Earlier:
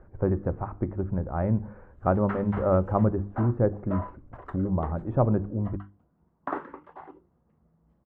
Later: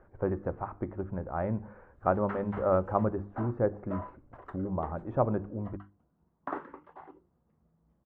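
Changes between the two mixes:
speech: add low shelf 310 Hz -10 dB; background -4.5 dB

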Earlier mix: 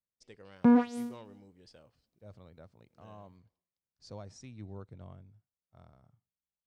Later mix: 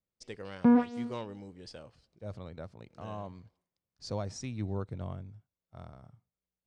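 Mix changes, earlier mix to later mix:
speech +10.0 dB; background: add air absorption 130 m

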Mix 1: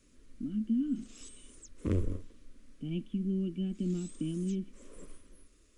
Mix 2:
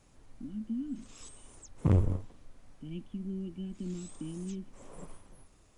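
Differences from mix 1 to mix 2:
speech -5.5 dB; background: remove fixed phaser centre 330 Hz, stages 4

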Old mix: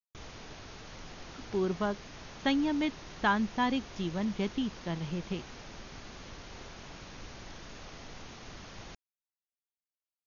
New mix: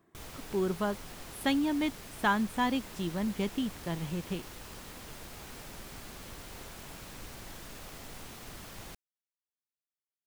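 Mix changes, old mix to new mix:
speech: entry -1.00 s; master: remove brick-wall FIR low-pass 6800 Hz

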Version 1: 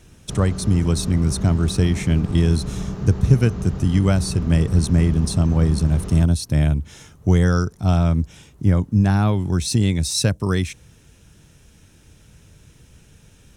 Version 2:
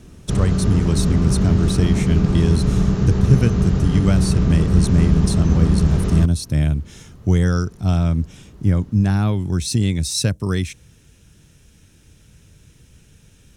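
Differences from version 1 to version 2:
background +10.5 dB; master: add bell 840 Hz -4.5 dB 1.6 oct

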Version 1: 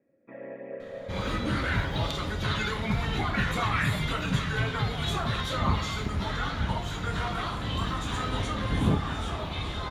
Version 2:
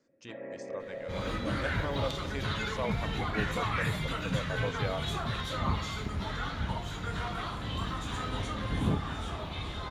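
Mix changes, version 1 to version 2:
speech: unmuted; first sound: send -9.0 dB; second sound -4.5 dB

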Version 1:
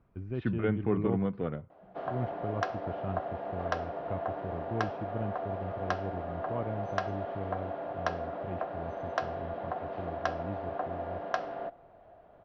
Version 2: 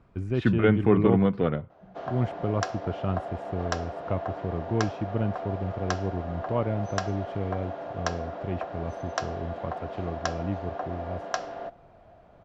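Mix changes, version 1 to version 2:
speech +8.0 dB; master: remove air absorption 250 m

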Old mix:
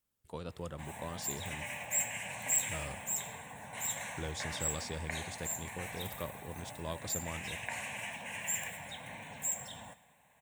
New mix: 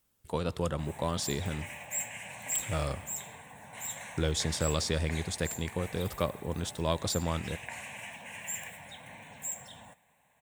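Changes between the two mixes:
speech +10.5 dB; background: send -10.5 dB

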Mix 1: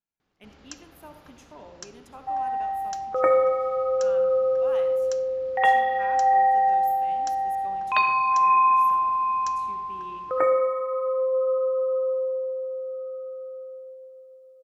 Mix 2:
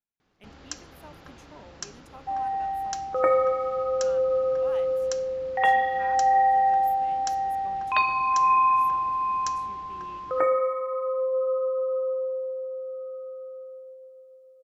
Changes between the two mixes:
first sound +5.0 dB; reverb: off

